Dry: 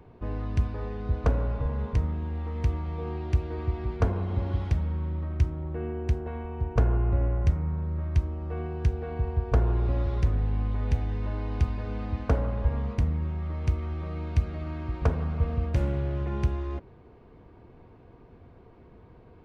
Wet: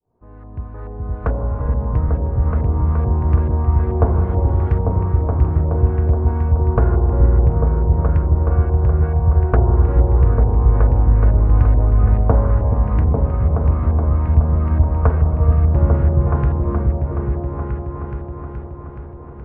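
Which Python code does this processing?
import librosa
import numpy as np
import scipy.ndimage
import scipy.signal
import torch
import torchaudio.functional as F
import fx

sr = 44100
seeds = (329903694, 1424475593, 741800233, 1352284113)

y = fx.fade_in_head(x, sr, length_s=1.89)
y = fx.filter_lfo_lowpass(y, sr, shape='saw_up', hz=2.3, low_hz=760.0, high_hz=1600.0, q=1.6)
y = fx.echo_opening(y, sr, ms=423, hz=200, octaves=2, feedback_pct=70, wet_db=0)
y = y * 10.0 ** (6.5 / 20.0)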